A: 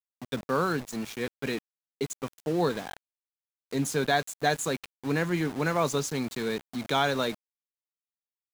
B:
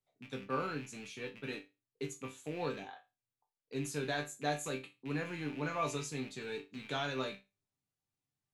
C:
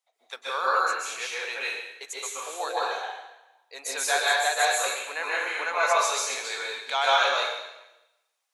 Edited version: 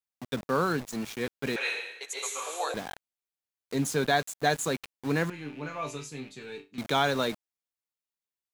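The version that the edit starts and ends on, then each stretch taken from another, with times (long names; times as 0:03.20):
A
0:01.56–0:02.74: punch in from C
0:05.30–0:06.78: punch in from B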